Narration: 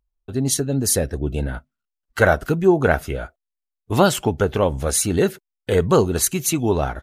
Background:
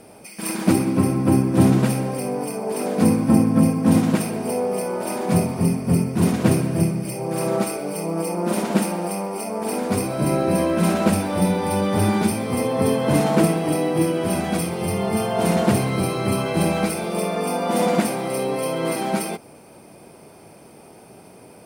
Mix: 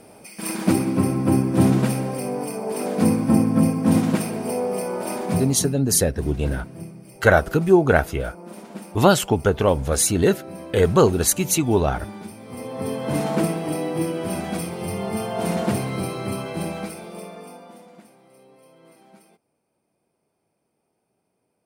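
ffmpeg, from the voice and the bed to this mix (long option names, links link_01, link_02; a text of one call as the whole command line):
ffmpeg -i stem1.wav -i stem2.wav -filter_complex "[0:a]adelay=5050,volume=0.5dB[link_01];[1:a]volume=11dB,afade=type=out:start_time=5.14:duration=0.65:silence=0.16788,afade=type=in:start_time=12.37:duration=0.9:silence=0.237137,afade=type=out:start_time=15.98:duration=1.85:silence=0.0630957[link_02];[link_01][link_02]amix=inputs=2:normalize=0" out.wav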